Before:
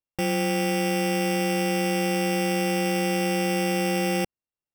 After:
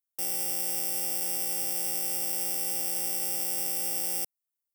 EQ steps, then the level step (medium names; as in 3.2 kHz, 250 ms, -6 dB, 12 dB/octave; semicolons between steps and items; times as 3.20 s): differentiator; peaking EQ 2.5 kHz -14 dB 2 oct; +6.5 dB